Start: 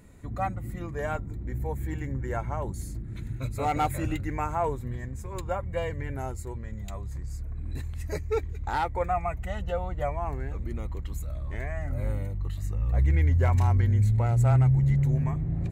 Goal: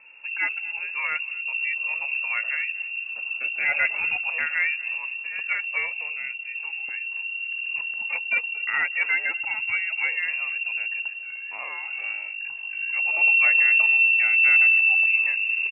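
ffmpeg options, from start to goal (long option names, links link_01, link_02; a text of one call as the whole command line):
ffmpeg -i in.wav -filter_complex "[0:a]asettb=1/sr,asplit=3[link_01][link_02][link_03];[link_01]atrim=end=11.094[link_04];[link_02]atrim=start=11.09:end=13.21,asetpts=PTS-STARTPTS,afade=type=in:duration=0.004:curve=qsin,afade=type=out:start_time=2.116:duration=0.004:curve=qsin,lowshelf=frequency=360:gain=-7[link_05];[link_03]atrim=start=13.206[link_06];[link_04][link_05]acrossfade=duration=0.004:curve1=hsin:curve2=qsin[link_07];[link_07][link_06]acrossfade=duration=0.004:curve1=qsin:curve2=hsin,aecho=1:1:240|480:0.0794|0.0214,lowpass=frequency=2400:width_type=q:width=0.5098,lowpass=frequency=2400:width_type=q:width=0.6013,lowpass=frequency=2400:width_type=q:width=0.9,lowpass=frequency=2400:width_type=q:width=2.563,afreqshift=-2800,asettb=1/sr,asplit=3[link_08][link_09][link_10];[link_08]atrim=end=5.864[link_11];[link_09]atrim=start=5.86:end=6.56,asetpts=PTS-STARTPTS,afade=type=in:duration=0.004:curve=qsin,afade=type=out:start_time=0.696:duration=0.004:curve=qsin,equalizer=frequency=1100:width_type=o:width=1.5:gain=-9[link_12];[link_10]atrim=start=6.556[link_13];[link_11][link_12]acrossfade=duration=0.004:curve1=hsin:curve2=qsin[link_14];[link_14][link_13]acrossfade=duration=0.004:curve1=qsin:curve2=hsin,volume=3dB" out.wav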